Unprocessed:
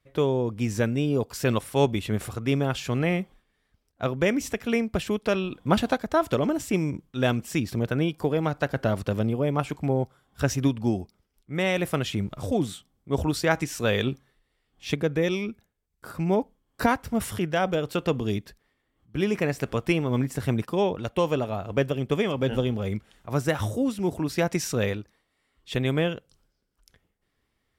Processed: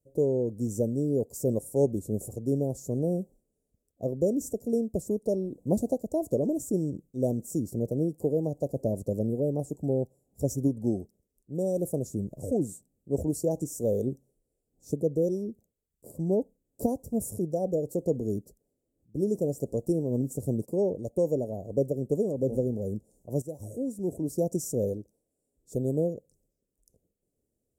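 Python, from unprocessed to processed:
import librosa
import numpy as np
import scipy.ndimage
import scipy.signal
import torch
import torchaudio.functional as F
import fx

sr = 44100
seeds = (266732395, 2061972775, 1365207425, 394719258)

y = fx.edit(x, sr, fx.fade_in_from(start_s=23.42, length_s=0.88, floor_db=-13.0), tone=tone)
y = scipy.signal.sosfilt(scipy.signal.ellip(3, 1.0, 50, [560.0, 7100.0], 'bandstop', fs=sr, output='sos'), y)
y = fx.low_shelf(y, sr, hz=120.0, db=-9.5)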